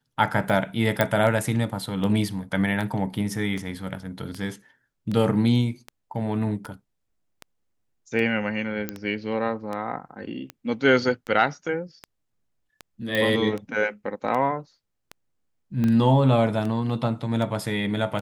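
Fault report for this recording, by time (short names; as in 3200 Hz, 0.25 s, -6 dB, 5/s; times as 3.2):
tick 78 rpm
1.01 pop -6 dBFS
8.89 pop -13 dBFS
13.15 pop -12 dBFS
15.84 pop -15 dBFS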